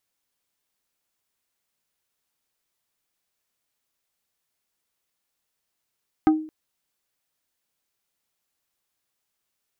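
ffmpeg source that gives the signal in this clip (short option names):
-f lavfi -i "aevalsrc='0.282*pow(10,-3*t/0.45)*sin(2*PI*312*t)+0.133*pow(10,-3*t/0.15)*sin(2*PI*780*t)+0.0631*pow(10,-3*t/0.085)*sin(2*PI*1248*t)+0.0299*pow(10,-3*t/0.065)*sin(2*PI*1560*t)+0.0141*pow(10,-3*t/0.048)*sin(2*PI*2028*t)':d=0.22:s=44100"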